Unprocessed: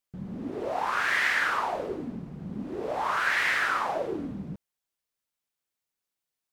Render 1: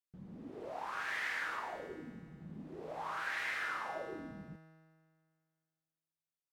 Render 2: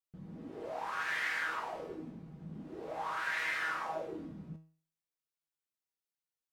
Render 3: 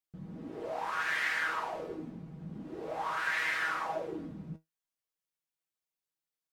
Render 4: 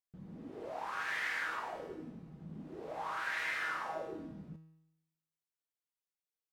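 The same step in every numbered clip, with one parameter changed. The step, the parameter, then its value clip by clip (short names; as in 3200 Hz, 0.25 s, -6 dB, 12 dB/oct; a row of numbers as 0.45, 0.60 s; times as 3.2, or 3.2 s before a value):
resonator, decay: 2, 0.42, 0.15, 0.9 s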